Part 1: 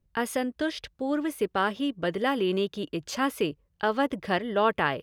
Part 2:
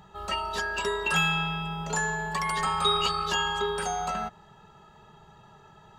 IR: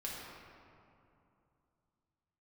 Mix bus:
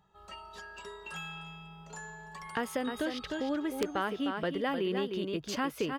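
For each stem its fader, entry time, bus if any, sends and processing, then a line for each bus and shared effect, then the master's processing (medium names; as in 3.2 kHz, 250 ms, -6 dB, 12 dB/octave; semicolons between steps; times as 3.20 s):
+3.0 dB, 2.40 s, no send, echo send -7 dB, peaking EQ 9.2 kHz -5 dB 1.2 oct
-16.5 dB, 0.00 s, no send, echo send -18 dB, none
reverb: none
echo: delay 305 ms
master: integer overflow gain 10.5 dB; compression 2:1, threshold -36 dBFS, peak gain reduction 11 dB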